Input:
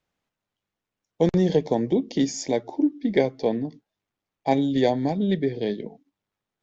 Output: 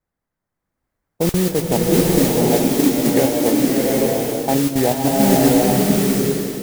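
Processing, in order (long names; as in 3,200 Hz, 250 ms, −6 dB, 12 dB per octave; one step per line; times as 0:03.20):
Butterworth low-pass 2,100 Hz 48 dB per octave
low-shelf EQ 110 Hz +8.5 dB
output level in coarse steps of 11 dB
noise that follows the level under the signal 10 dB
slow-attack reverb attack 820 ms, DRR −4 dB
level +5.5 dB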